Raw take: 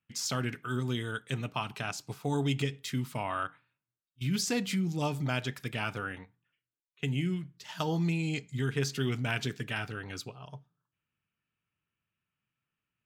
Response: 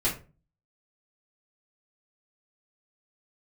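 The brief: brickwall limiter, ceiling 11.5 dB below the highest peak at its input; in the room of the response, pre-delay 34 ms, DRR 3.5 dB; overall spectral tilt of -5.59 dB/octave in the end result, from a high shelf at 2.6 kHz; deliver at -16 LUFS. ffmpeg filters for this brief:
-filter_complex "[0:a]highshelf=f=2600:g=-3.5,alimiter=level_in=1.68:limit=0.0631:level=0:latency=1,volume=0.596,asplit=2[s0][s1];[1:a]atrim=start_sample=2205,adelay=34[s2];[s1][s2]afir=irnorm=-1:irlink=0,volume=0.237[s3];[s0][s3]amix=inputs=2:normalize=0,volume=9.44"

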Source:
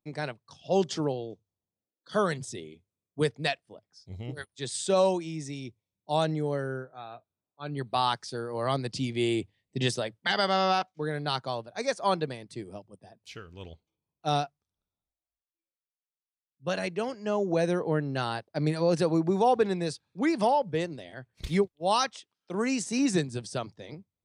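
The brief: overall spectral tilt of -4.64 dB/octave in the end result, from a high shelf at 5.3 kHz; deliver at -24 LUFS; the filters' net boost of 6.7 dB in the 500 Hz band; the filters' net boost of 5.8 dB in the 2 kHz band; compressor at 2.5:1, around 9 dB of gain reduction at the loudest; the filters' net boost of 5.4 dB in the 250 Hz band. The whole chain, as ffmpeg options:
-af "equalizer=f=250:t=o:g=5,equalizer=f=500:t=o:g=6.5,equalizer=f=2000:t=o:g=7.5,highshelf=f=5300:g=-3.5,acompressor=threshold=0.0501:ratio=2.5,volume=2"

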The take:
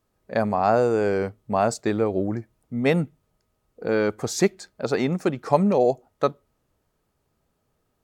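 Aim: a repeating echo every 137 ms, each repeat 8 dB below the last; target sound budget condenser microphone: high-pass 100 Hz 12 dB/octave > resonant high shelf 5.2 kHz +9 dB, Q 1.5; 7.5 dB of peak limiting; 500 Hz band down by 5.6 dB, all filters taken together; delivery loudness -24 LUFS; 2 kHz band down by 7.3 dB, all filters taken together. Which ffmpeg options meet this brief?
-af "equalizer=f=500:t=o:g=-6.5,equalizer=f=2000:t=o:g=-8.5,alimiter=limit=0.168:level=0:latency=1,highpass=100,highshelf=f=5200:t=q:w=1.5:g=9,aecho=1:1:137|274|411|548|685:0.398|0.159|0.0637|0.0255|0.0102,volume=1.41"

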